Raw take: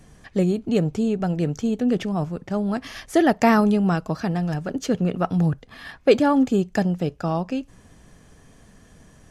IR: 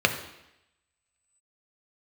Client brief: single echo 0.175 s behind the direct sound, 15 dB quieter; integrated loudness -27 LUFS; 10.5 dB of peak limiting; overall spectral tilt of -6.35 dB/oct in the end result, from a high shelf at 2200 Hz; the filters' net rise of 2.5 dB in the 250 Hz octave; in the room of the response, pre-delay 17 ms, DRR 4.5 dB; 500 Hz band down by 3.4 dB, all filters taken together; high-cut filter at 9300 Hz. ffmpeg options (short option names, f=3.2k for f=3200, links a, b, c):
-filter_complex "[0:a]lowpass=9.3k,equalizer=f=250:t=o:g=4.5,equalizer=f=500:t=o:g=-6.5,highshelf=f=2.2k:g=8.5,alimiter=limit=-12.5dB:level=0:latency=1,aecho=1:1:175:0.178,asplit=2[a][b];[1:a]atrim=start_sample=2205,adelay=17[c];[b][c]afir=irnorm=-1:irlink=0,volume=-20.5dB[d];[a][d]amix=inputs=2:normalize=0,volume=-5dB"